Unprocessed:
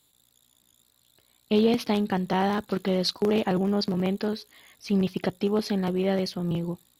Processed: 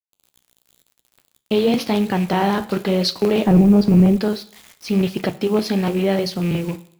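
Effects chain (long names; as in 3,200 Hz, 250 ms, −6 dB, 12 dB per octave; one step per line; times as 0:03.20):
loose part that buzzes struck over −28 dBFS, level −32 dBFS
0:03.46–0:04.18: spectral tilt −4 dB per octave
in parallel at +1 dB: brickwall limiter −18 dBFS, peak gain reduction 10 dB
on the sum: bit reduction 7 bits
flanger 0.96 Hz, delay 7.6 ms, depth 9.4 ms, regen −65%
on a send at −16 dB: convolution reverb RT60 0.65 s, pre-delay 29 ms
on the sum: level +4.5 dB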